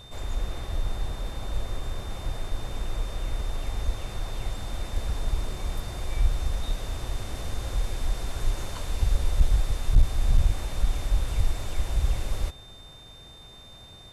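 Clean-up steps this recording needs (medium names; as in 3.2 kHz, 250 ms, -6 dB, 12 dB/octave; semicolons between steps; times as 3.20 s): clip repair -10.5 dBFS; band-stop 3.6 kHz, Q 30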